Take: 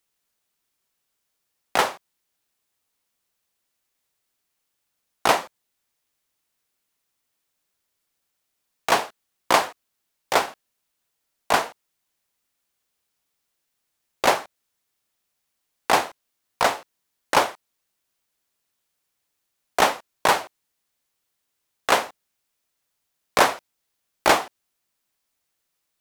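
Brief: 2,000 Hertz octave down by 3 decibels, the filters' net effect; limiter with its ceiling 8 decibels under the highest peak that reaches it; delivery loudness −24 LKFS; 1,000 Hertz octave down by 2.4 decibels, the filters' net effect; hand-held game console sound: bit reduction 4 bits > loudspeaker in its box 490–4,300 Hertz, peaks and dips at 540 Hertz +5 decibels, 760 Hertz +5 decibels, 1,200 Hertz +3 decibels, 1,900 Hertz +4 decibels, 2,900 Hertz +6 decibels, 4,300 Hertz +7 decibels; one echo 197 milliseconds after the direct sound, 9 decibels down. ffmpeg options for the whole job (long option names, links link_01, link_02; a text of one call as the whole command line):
ffmpeg -i in.wav -af "equalizer=frequency=1000:width_type=o:gain=-6.5,equalizer=frequency=2000:width_type=o:gain=-6,alimiter=limit=-12.5dB:level=0:latency=1,aecho=1:1:197:0.355,acrusher=bits=3:mix=0:aa=0.000001,highpass=490,equalizer=frequency=540:width_type=q:width=4:gain=5,equalizer=frequency=760:width_type=q:width=4:gain=5,equalizer=frequency=1200:width_type=q:width=4:gain=3,equalizer=frequency=1900:width_type=q:width=4:gain=4,equalizer=frequency=2900:width_type=q:width=4:gain=6,equalizer=frequency=4300:width_type=q:width=4:gain=7,lowpass=frequency=4300:width=0.5412,lowpass=frequency=4300:width=1.3066,volume=3dB" out.wav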